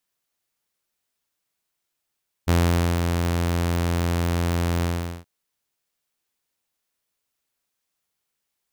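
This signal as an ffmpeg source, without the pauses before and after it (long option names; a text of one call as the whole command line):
ffmpeg -f lavfi -i "aevalsrc='0.224*(2*mod(85.9*t,1)-1)':duration=2.775:sample_rate=44100,afade=type=in:duration=0.022,afade=type=out:start_time=0.022:duration=0.481:silence=0.562,afade=type=out:start_time=2.36:duration=0.415" out.wav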